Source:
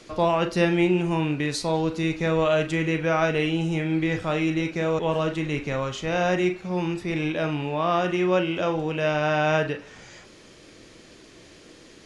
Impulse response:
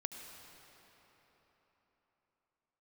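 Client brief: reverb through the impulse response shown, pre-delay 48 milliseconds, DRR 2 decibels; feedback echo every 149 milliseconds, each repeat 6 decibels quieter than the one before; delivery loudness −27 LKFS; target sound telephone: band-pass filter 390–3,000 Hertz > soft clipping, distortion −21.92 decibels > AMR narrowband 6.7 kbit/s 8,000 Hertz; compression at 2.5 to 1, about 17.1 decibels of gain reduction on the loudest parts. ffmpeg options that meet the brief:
-filter_complex "[0:a]acompressor=threshold=-44dB:ratio=2.5,aecho=1:1:149|298|447|596|745|894:0.501|0.251|0.125|0.0626|0.0313|0.0157,asplit=2[link_01][link_02];[1:a]atrim=start_sample=2205,adelay=48[link_03];[link_02][link_03]afir=irnorm=-1:irlink=0,volume=-1dB[link_04];[link_01][link_04]amix=inputs=2:normalize=0,highpass=390,lowpass=3000,asoftclip=threshold=-28.5dB,volume=15dB" -ar 8000 -c:a libopencore_amrnb -b:a 6700

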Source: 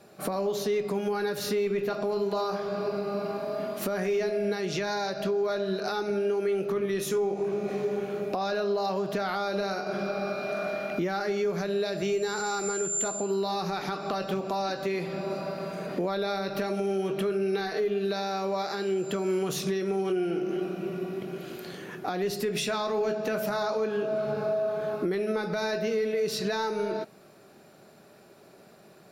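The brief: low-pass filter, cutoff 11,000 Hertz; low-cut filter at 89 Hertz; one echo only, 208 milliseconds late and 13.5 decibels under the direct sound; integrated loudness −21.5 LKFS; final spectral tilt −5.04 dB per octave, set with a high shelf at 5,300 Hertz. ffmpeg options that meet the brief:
ffmpeg -i in.wav -af "highpass=89,lowpass=11000,highshelf=frequency=5300:gain=-6.5,aecho=1:1:208:0.211,volume=8dB" out.wav

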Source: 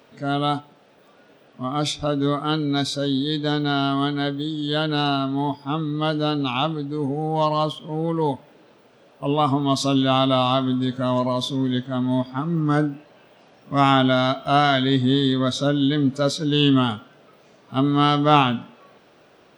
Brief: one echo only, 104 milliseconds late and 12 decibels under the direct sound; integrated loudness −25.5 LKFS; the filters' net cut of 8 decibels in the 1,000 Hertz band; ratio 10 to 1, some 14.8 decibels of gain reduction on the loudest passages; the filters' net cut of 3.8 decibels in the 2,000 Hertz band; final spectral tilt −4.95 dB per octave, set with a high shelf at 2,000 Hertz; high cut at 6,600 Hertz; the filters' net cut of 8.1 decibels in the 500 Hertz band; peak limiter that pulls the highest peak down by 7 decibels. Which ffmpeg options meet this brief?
ffmpeg -i in.wav -af "lowpass=6600,equalizer=frequency=500:width_type=o:gain=-8,equalizer=frequency=1000:width_type=o:gain=-8.5,highshelf=frequency=2000:gain=6.5,equalizer=frequency=2000:width_type=o:gain=-6,acompressor=threshold=-31dB:ratio=10,alimiter=level_in=3.5dB:limit=-24dB:level=0:latency=1,volume=-3.5dB,aecho=1:1:104:0.251,volume=10.5dB" out.wav

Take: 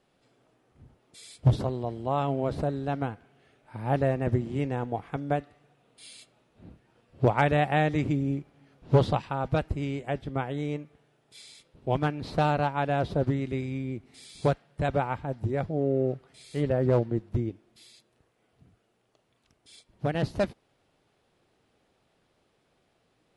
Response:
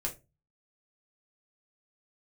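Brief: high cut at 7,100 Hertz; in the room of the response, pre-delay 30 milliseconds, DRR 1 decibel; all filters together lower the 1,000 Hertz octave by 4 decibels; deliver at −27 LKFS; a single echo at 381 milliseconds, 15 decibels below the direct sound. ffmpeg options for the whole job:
-filter_complex "[0:a]lowpass=7100,equalizer=frequency=1000:width_type=o:gain=-6,aecho=1:1:381:0.178,asplit=2[link_01][link_02];[1:a]atrim=start_sample=2205,adelay=30[link_03];[link_02][link_03]afir=irnorm=-1:irlink=0,volume=-3.5dB[link_04];[link_01][link_04]amix=inputs=2:normalize=0,volume=-1dB"

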